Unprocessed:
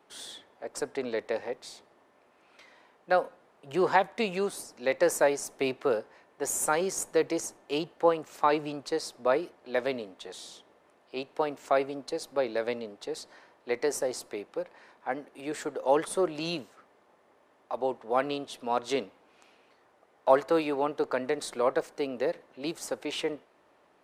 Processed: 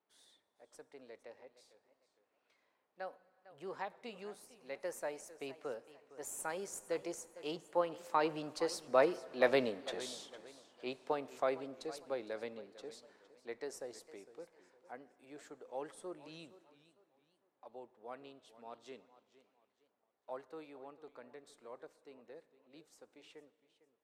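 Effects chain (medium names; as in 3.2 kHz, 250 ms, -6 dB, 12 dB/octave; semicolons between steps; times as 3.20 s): Doppler pass-by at 9.64 s, 12 m/s, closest 8 m; on a send at -20 dB: reverberation RT60 2.0 s, pre-delay 8 ms; on the sum: modulated delay 457 ms, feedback 33%, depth 153 cents, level -16.5 dB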